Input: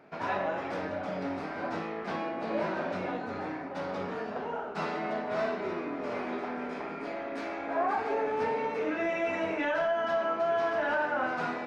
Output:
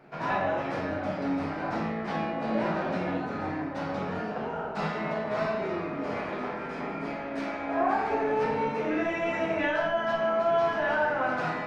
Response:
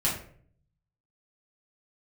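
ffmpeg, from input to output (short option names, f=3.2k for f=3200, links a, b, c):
-filter_complex "[0:a]asplit=2[a][b];[1:a]atrim=start_sample=2205,lowshelf=f=140:g=6,adelay=8[c];[b][c]afir=irnorm=-1:irlink=0,volume=-10dB[d];[a][d]amix=inputs=2:normalize=0"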